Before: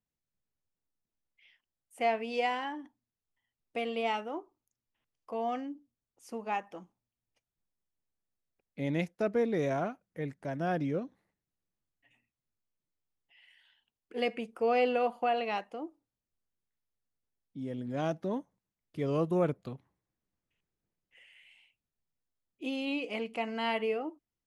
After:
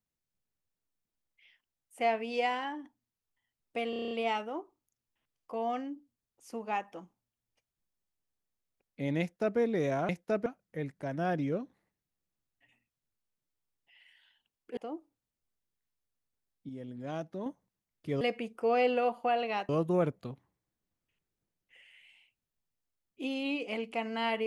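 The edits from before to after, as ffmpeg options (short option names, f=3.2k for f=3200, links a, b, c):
-filter_complex "[0:a]asplit=15[a][b][c][d][e][f][g][h][i][j][k][l][m][n][o];[a]atrim=end=3.932[p];[b]atrim=start=3.898:end=3.932[q];[c]atrim=start=3.898:end=3.932[r];[d]atrim=start=3.898:end=3.932[s];[e]atrim=start=3.898:end=3.932[t];[f]atrim=start=3.898:end=3.932[u];[g]atrim=start=3.898:end=3.932[v];[h]atrim=start=3.898:end=9.882[w];[i]atrim=start=8.998:end=9.372[x];[j]atrim=start=9.878:end=14.192[y];[k]atrim=start=15.668:end=17.592[z];[l]atrim=start=17.588:end=18.362,asetpts=PTS-STARTPTS,volume=-5.5dB[aa];[m]atrim=start=18.358:end=19.112[ab];[n]atrim=start=14.188:end=15.672[ac];[o]atrim=start=19.108[ad];[p][q]acrossfade=d=0.004:c1=hsin:c2=hsin[ae];[ae][r]acrossfade=d=0.004:c1=hsin:c2=hsin[af];[af][s]acrossfade=d=0.004:c1=hsin:c2=hsin[ag];[ag][t]acrossfade=d=0.004:c1=hsin:c2=hsin[ah];[ah][u]acrossfade=d=0.004:c1=hsin:c2=hsin[ai];[ai][v]acrossfade=d=0.004:c1=hsin:c2=hsin[aj];[aj][w]acrossfade=d=0.004:c1=hsin:c2=hsin[ak];[ak][x]acrossfade=d=0.004:c1=hsin:c2=hsin[al];[al][y]acrossfade=d=0.004:c1=hsin:c2=hsin[am];[am][z]acrossfade=d=0.004:c1=hsin:c2=hsin[an];[an][aa]acrossfade=d=0.004:c1=hsin:c2=hsin[ao];[ao][ab]acrossfade=d=0.004:c1=hsin:c2=hsin[ap];[ap][ac]acrossfade=d=0.004:c1=hsin:c2=hsin[aq];[aq][ad]acrossfade=d=0.004:c1=hsin:c2=hsin"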